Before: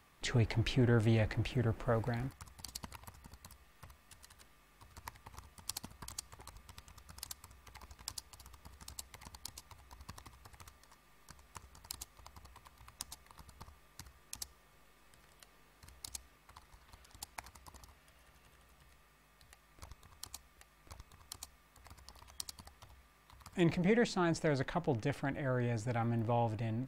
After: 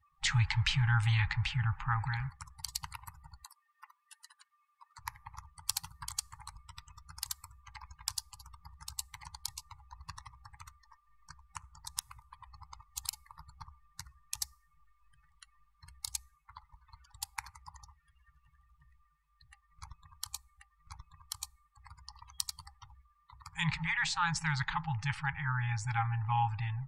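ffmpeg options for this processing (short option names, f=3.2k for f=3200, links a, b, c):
-filter_complex "[0:a]asettb=1/sr,asplit=3[a][b][c];[a]atrim=end=3.444[d];[b]atrim=start=3.44:end=4.99,asetpts=PTS-STARTPTS,afade=t=in:d=0.004:c=qsin,afade=t=out:st=1.546:d=0.004:c=qsin,highpass=550[e];[c]atrim=start=4.986[f];[d][e]acrossfade=d=0.004:c1=hsin:c2=qsin[g];[g][f]acrossfade=d=0.004:c1=qsin:c2=hsin,asplit=3[h][i][j];[h]atrim=end=11.872[k];[i]atrim=start=11.868:end=13.132,asetpts=PTS-STARTPTS,areverse[l];[j]atrim=start=13.128[m];[k][l]acrossfade=d=0.004:c1=hsin:c2=hsin[n];[n][m]acrossfade=d=0.004:c1=hsin:c2=hsin,lowshelf=f=450:g=-5,afftdn=nr=29:nf=-58,afftfilt=real='re*(1-between(b*sr/4096,170,790))':imag='im*(1-between(b*sr/4096,170,790))':win_size=4096:overlap=0.75,volume=8dB"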